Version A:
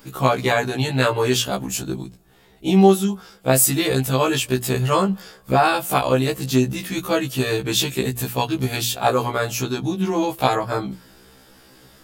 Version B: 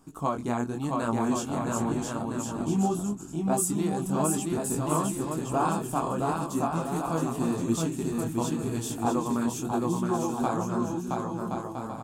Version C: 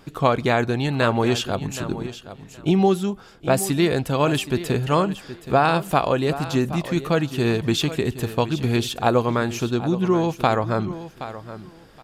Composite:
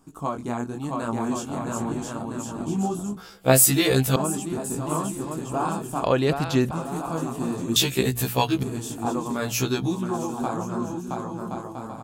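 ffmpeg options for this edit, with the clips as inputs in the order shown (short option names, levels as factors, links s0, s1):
-filter_complex "[0:a]asplit=3[s0][s1][s2];[1:a]asplit=5[s3][s4][s5][s6][s7];[s3]atrim=end=3.172[s8];[s0]atrim=start=3.168:end=4.162[s9];[s4]atrim=start=4.158:end=6.042[s10];[2:a]atrim=start=6.038:end=6.712[s11];[s5]atrim=start=6.708:end=7.762[s12];[s1]atrim=start=7.758:end=8.632[s13];[s6]atrim=start=8.628:end=9.55[s14];[s2]atrim=start=9.31:end=10.07[s15];[s7]atrim=start=9.83[s16];[s8][s9]acrossfade=d=0.004:c1=hsin:c2=hsin[s17];[s17][s10]acrossfade=d=0.004:c1=hsin:c2=hsin[s18];[s18][s11]acrossfade=d=0.004:c1=hsin:c2=hsin[s19];[s19][s12]acrossfade=d=0.004:c1=hsin:c2=hsin[s20];[s20][s13]acrossfade=d=0.004:c1=hsin:c2=hsin[s21];[s21][s14]acrossfade=d=0.004:c1=hsin:c2=hsin[s22];[s22][s15]acrossfade=d=0.24:c1=tri:c2=tri[s23];[s23][s16]acrossfade=d=0.24:c1=tri:c2=tri"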